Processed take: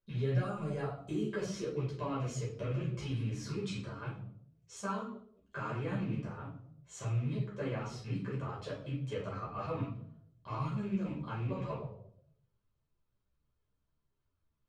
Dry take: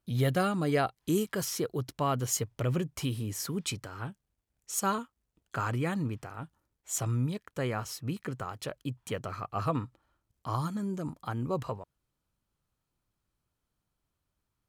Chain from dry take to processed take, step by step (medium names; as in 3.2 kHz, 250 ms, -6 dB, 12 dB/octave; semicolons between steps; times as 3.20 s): rattle on loud lows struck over -36 dBFS, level -36 dBFS; 0.42–1.09 s: ten-band graphic EQ 250 Hz -10 dB, 500 Hz -4 dB, 2 kHz -8 dB, 4 kHz -10 dB, 8 kHz +8 dB; compression 5:1, threshold -30 dBFS, peak gain reduction 7 dB; distance through air 120 m; reverberation RT60 0.70 s, pre-delay 5 ms, DRR -3 dB; three-phase chorus; trim -6.5 dB